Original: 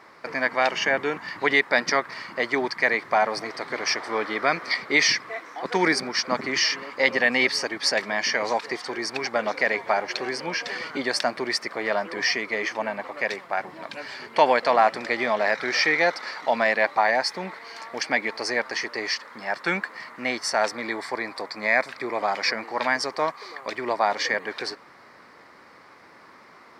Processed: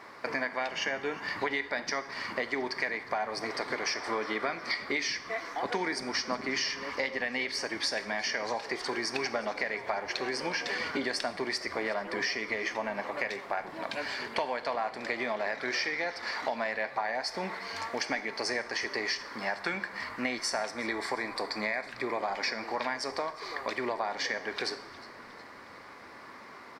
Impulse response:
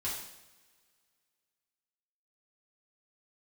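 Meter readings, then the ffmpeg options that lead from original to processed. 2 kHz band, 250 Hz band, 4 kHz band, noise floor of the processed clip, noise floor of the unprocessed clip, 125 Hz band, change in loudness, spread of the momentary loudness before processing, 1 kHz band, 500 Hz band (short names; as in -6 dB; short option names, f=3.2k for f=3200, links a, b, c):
-8.5 dB, -6.0 dB, -7.0 dB, -49 dBFS, -50 dBFS, -6.5 dB, -8.5 dB, 11 LU, -9.0 dB, -8.5 dB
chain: -filter_complex "[0:a]bandreject=f=1.3k:w=30,acompressor=threshold=-30dB:ratio=10,asplit=5[a][b][c][d][e];[b]adelay=360,afreqshift=-92,volume=-20.5dB[f];[c]adelay=720,afreqshift=-184,volume=-26.5dB[g];[d]adelay=1080,afreqshift=-276,volume=-32.5dB[h];[e]adelay=1440,afreqshift=-368,volume=-38.6dB[i];[a][f][g][h][i]amix=inputs=5:normalize=0,asplit=2[j][k];[1:a]atrim=start_sample=2205[l];[k][l]afir=irnorm=-1:irlink=0,volume=-11dB[m];[j][m]amix=inputs=2:normalize=0"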